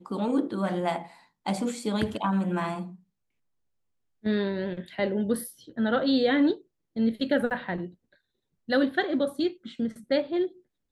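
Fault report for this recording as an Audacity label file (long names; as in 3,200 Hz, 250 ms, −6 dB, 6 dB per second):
7.500000	7.510000	drop-out 8.4 ms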